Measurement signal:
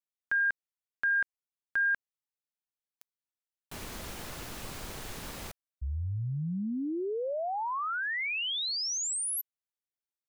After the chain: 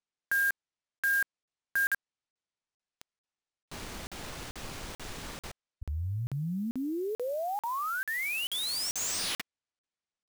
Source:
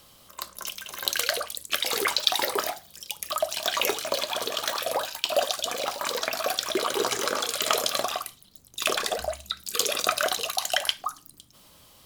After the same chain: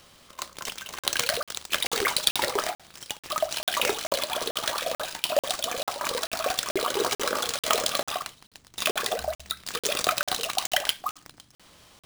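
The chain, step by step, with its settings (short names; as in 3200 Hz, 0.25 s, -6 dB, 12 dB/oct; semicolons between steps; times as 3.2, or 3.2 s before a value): sample-rate reducer 14000 Hz, jitter 20%; crackling interface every 0.44 s, samples 2048, zero, from 0.99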